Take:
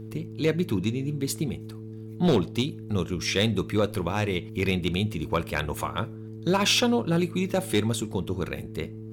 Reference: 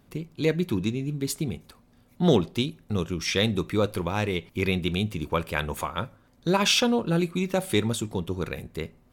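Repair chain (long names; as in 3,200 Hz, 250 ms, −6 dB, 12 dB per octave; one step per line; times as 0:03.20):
clipped peaks rebuilt −15 dBFS
hum removal 109.9 Hz, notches 4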